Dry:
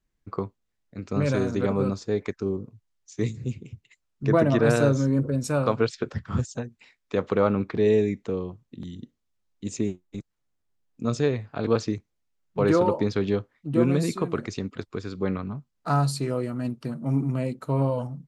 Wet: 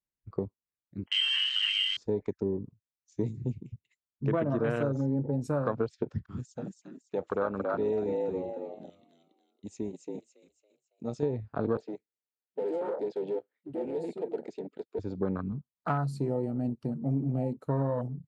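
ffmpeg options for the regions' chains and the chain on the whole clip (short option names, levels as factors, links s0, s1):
-filter_complex "[0:a]asettb=1/sr,asplit=3[s0][s1][s2];[s0]atrim=end=1.064[s3];[s1]atrim=start=1.06:end=1.97,asetpts=PTS-STARTPTS,afade=t=in:d=0.004:c=qsin,afade=t=out:st=0.906:d=0.004:c=qsin,asplit=2[s4][s5];[s5]adelay=29,volume=0.447[s6];[s4][s6]amix=inputs=2:normalize=0,atrim=end_sample=40131,lowpass=f=2800:t=q:w=0.5098,lowpass=f=2800:t=q:w=0.6013,lowpass=f=2800:t=q:w=0.9,lowpass=f=2800:t=q:w=2.563,afreqshift=-3300[s7];[s2]atrim=start=1.966[s8];[s3][s7]acrossfade=d=0.004:c1=hsin:c2=qsin[s9];[s9][s8]acrossfade=d=0.004:c1=qsin:c2=hsin,asettb=1/sr,asplit=3[s10][s11][s12];[s10]atrim=end=6.264[s13];[s11]atrim=start=6.26:end=11.23,asetpts=PTS-STARTPTS,afade=t=in:d=0.004:c=qsin,afade=t=out:st=4.966:d=0.004:c=qsin,agate=range=0.0224:threshold=0.00631:ratio=3:release=100:detection=peak,lowshelf=f=450:g=-11.5,asplit=6[s14][s15][s16][s17][s18][s19];[s15]adelay=278,afreqshift=68,volume=0.631[s20];[s16]adelay=556,afreqshift=136,volume=0.251[s21];[s17]adelay=834,afreqshift=204,volume=0.101[s22];[s18]adelay=1112,afreqshift=272,volume=0.0403[s23];[s19]adelay=1390,afreqshift=340,volume=0.0162[s24];[s14][s20][s21][s22][s23][s24]amix=inputs=6:normalize=0,atrim=end_sample=219177[s25];[s12]atrim=start=11.226[s26];[s13][s25]acrossfade=d=0.004:c1=hsin:c2=qsin[s27];[s27][s26]acrossfade=d=0.004:c1=qsin:c2=hsin,asettb=1/sr,asplit=3[s28][s29][s30];[s28]atrim=end=11.774[s31];[s29]atrim=start=11.77:end=14.99,asetpts=PTS-STARTPTS,afade=t=in:d=0.004:c=qsin,afade=t=out:st=3.216:d=0.004:c=qsin,acrossover=split=350|4100[s32][s33][s34];[s32]acompressor=threshold=0.0251:ratio=4[s35];[s33]acompressor=threshold=0.0562:ratio=4[s36];[s34]acompressor=threshold=0.00631:ratio=4[s37];[s35][s36][s37]amix=inputs=3:normalize=0,asoftclip=type=hard:threshold=0.0299,highpass=270,equalizer=f=450:t=q:w=4:g=7,equalizer=f=1100:t=q:w=4:g=-10,equalizer=f=5800:t=q:w=4:g=-10,lowpass=f=9300:w=0.5412,lowpass=f=9300:w=1.3066[s38];[s30]atrim=start=14.986[s39];[s31][s38]acrossfade=d=0.004:c1=hsin:c2=qsin[s40];[s40][s39]acrossfade=d=0.004:c1=qsin:c2=hsin,highpass=f=84:p=1,afwtdn=0.0282,acompressor=threshold=0.0562:ratio=6"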